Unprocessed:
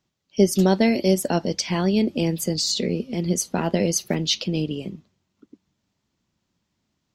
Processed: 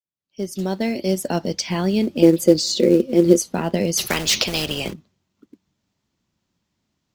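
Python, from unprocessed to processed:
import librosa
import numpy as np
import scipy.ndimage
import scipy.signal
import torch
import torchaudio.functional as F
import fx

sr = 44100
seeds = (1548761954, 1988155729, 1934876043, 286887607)

p1 = fx.fade_in_head(x, sr, length_s=1.47)
p2 = fx.small_body(p1, sr, hz=(350.0, 510.0), ring_ms=60, db=16, at=(2.22, 3.42))
p3 = fx.quant_float(p2, sr, bits=2)
p4 = p2 + (p3 * 10.0 ** (-7.5 / 20.0))
p5 = fx.spectral_comp(p4, sr, ratio=4.0, at=(3.97, 4.92), fade=0.02)
y = p5 * 10.0 ** (-2.5 / 20.0)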